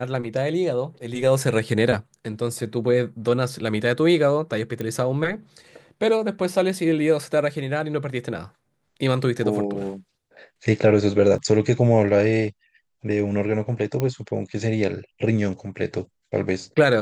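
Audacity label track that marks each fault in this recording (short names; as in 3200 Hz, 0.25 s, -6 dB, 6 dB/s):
4.810000	4.810000	pop -16 dBFS
11.380000	11.380000	gap 3.2 ms
14.000000	14.000000	pop -12 dBFS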